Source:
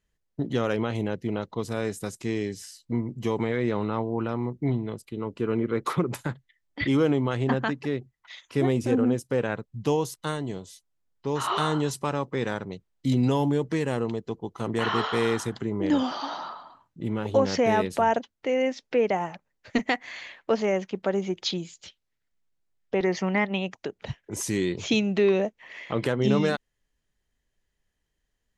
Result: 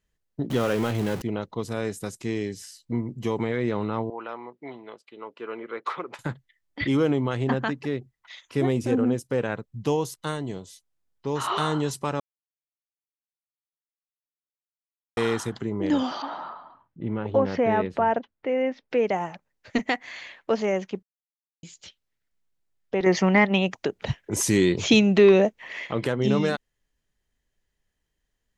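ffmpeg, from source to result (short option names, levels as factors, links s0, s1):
-filter_complex "[0:a]asettb=1/sr,asplit=3[s0][s1][s2];[s0]atrim=end=0.504[s3];[s1]atrim=start=0.5:end=1.22,asetpts=PTS-STARTPTS,afade=t=in:d=0.004:c=qsin,afade=t=out:st=0.716:d=0.004:c=qsin,aeval=exprs='val(0)+0.5*0.0335*sgn(val(0))':c=same[s4];[s2]atrim=start=1.216[s5];[s3][s4]acrossfade=d=0.004:c1=hsin:c2=qsin[s6];[s6][s5]acrossfade=d=0.004:c1=qsin:c2=hsin,asettb=1/sr,asplit=3[s7][s8][s9];[s7]atrim=end=4.104[s10];[s8]atrim=start=4.1:end=6.19,asetpts=PTS-STARTPTS,afade=t=in:d=0.004:c=qsin,afade=t=out:st=2.086:d=0.004:c=qsin,highpass=620,lowpass=3500[s11];[s9]atrim=start=6.186[s12];[s10][s11]acrossfade=d=0.004:c1=hsin:c2=qsin[s13];[s13][s12]acrossfade=d=0.004:c1=qsin:c2=hsin,asettb=1/sr,asplit=3[s14][s15][s16];[s14]atrim=end=16.224[s17];[s15]atrim=start=16.22:end=18.9,asetpts=PTS-STARTPTS,afade=t=in:d=0.004:c=qsin,afade=t=out:st=2.676:d=0.004:c=qsin,lowpass=2300[s18];[s16]atrim=start=18.896[s19];[s17][s18]acrossfade=d=0.004:c1=hsin:c2=qsin[s20];[s20][s19]acrossfade=d=0.004:c1=qsin:c2=hsin,asettb=1/sr,asplit=3[s21][s22][s23];[s21]atrim=end=23.064[s24];[s22]atrim=start=23.06:end=25.87,asetpts=PTS-STARTPTS,afade=t=in:d=0.004:c=qsin,afade=t=out:st=2.806:d=0.004:c=qsin,acontrast=63[s25];[s23]atrim=start=25.866[s26];[s24][s25]acrossfade=d=0.004:c1=hsin:c2=qsin[s27];[s27][s26]acrossfade=d=0.004:c1=qsin:c2=hsin,asplit=5[s28][s29][s30][s31][s32];[s28]atrim=end=12.2,asetpts=PTS-STARTPTS,afade=t=out:st=12.196:d=0.004:c=hsin[s33];[s29]atrim=start=12.2:end=15.17,asetpts=PTS-STARTPTS,volume=0[s34];[s30]atrim=start=15.17:end=21.03,asetpts=PTS-STARTPTS,afade=t=in:d=0.004:c=hsin,afade=t=out:st=5.856:d=0.004:c=hsin[s35];[s31]atrim=start=21.03:end=21.63,asetpts=PTS-STARTPTS,volume=0[s36];[s32]atrim=start=21.63,asetpts=PTS-STARTPTS,afade=t=in:d=0.004:c=hsin[s37];[s33][s34][s35][s36][s37]concat=n=5:v=0:a=1"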